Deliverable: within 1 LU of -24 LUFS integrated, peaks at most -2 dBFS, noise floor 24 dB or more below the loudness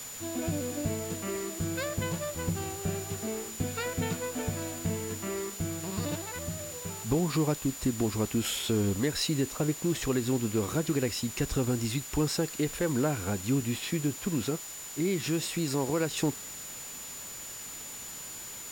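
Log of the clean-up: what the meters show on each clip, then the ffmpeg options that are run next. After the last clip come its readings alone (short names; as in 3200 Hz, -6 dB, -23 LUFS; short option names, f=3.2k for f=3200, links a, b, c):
steady tone 7000 Hz; tone level -42 dBFS; noise floor -42 dBFS; noise floor target -56 dBFS; loudness -31.5 LUFS; peak -17.0 dBFS; loudness target -24.0 LUFS
-> -af "bandreject=f=7k:w=30"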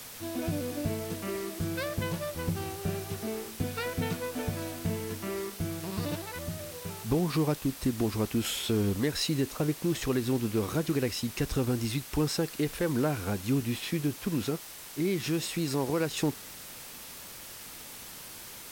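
steady tone none; noise floor -45 dBFS; noise floor target -56 dBFS
-> -af "afftdn=nr=11:nf=-45"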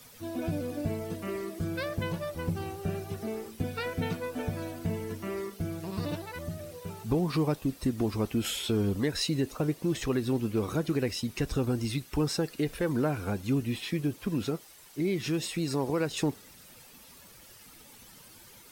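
noise floor -53 dBFS; noise floor target -56 dBFS
-> -af "afftdn=nr=6:nf=-53"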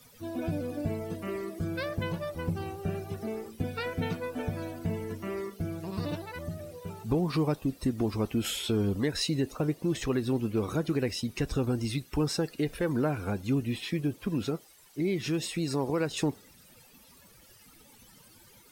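noise floor -57 dBFS; loudness -32.0 LUFS; peak -17.5 dBFS; loudness target -24.0 LUFS
-> -af "volume=8dB"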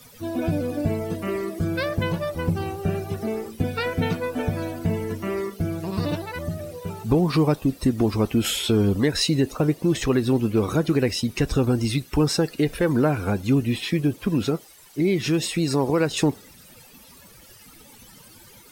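loudness -24.0 LUFS; peak -9.5 dBFS; noise floor -49 dBFS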